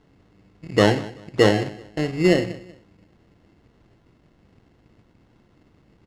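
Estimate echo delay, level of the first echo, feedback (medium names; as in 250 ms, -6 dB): 190 ms, -19.5 dB, 28%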